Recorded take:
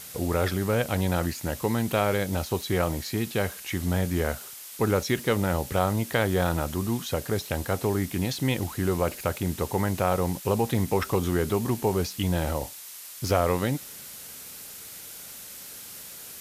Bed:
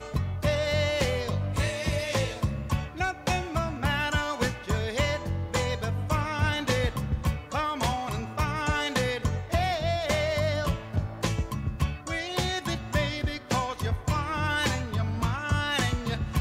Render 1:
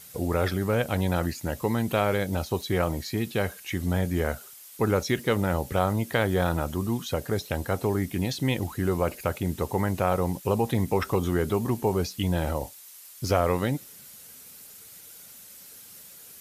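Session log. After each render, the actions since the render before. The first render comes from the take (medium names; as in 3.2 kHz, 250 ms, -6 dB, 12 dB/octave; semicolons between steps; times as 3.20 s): noise reduction 8 dB, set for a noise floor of -43 dBFS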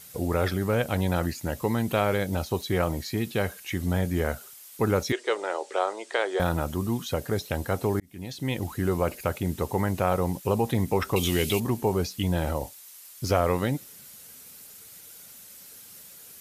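5.12–6.40 s: Chebyshev band-pass 370–8500 Hz, order 4; 8.00–8.72 s: fade in; 11.16–11.60 s: resonant high shelf 1.9 kHz +10.5 dB, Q 3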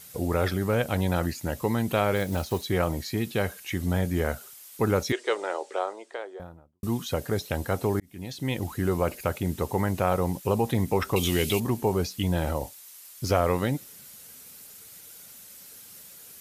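2.16–2.68 s: block-companded coder 5-bit; 5.31–6.83 s: studio fade out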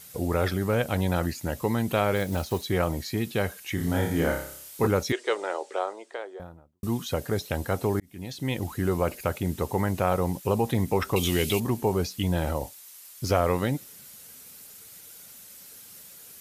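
3.75–4.87 s: flutter echo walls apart 5.1 m, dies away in 0.55 s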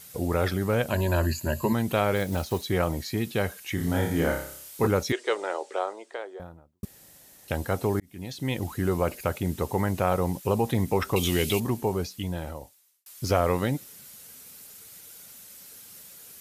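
0.90–1.73 s: rippled EQ curve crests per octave 1.4, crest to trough 13 dB; 6.85–7.48 s: room tone; 11.59–13.06 s: fade out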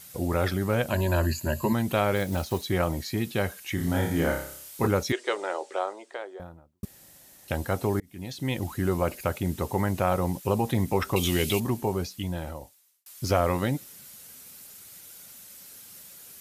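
band-stop 450 Hz, Q 12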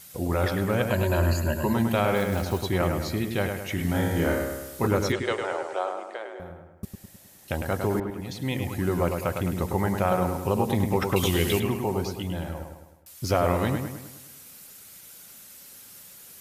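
bucket-brigade echo 104 ms, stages 2048, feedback 50%, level -5.5 dB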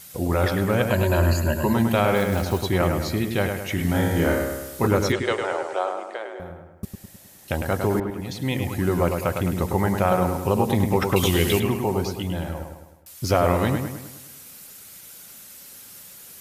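trim +3.5 dB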